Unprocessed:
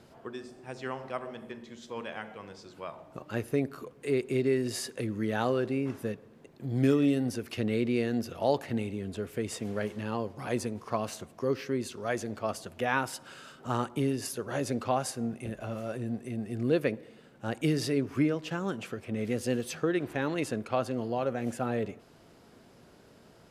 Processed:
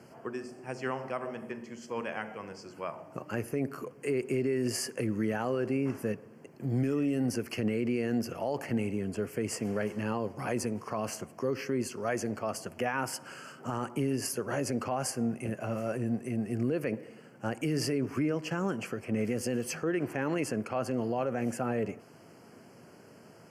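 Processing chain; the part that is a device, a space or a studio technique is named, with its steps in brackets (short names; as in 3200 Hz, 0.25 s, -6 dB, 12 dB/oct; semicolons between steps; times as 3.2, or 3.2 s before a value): PA system with an anti-feedback notch (HPF 100 Hz 24 dB/oct; Butterworth band-stop 3700 Hz, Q 2.5; limiter -24.5 dBFS, peak gain reduction 11.5 dB); gain +3 dB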